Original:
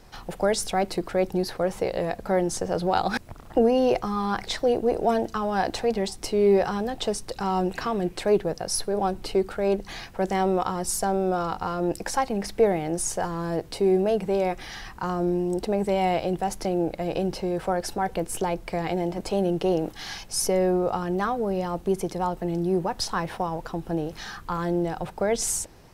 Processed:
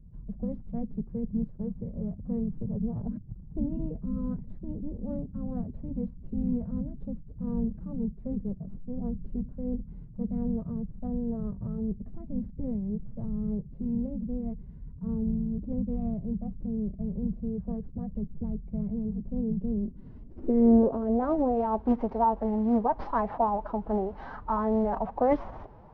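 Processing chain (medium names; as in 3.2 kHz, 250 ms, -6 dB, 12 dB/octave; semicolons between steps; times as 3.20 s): CVSD coder 32 kbps; dynamic bell 110 Hz, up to -5 dB, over -54 dBFS, Q 5.7; low-pass sweep 160 Hz -> 870 Hz, 19.69–21.66 s; formant-preserving pitch shift +4 st; peaking EQ 510 Hz -4.5 dB 2.9 oct; trim +1.5 dB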